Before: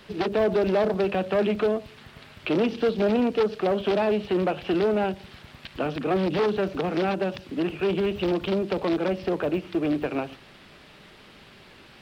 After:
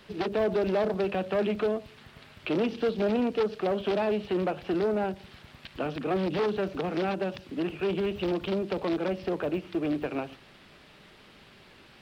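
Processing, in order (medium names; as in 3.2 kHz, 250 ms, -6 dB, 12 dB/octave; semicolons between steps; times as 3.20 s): 4.50–5.16 s: peaking EQ 2.9 kHz -5.5 dB 0.72 oct; trim -4 dB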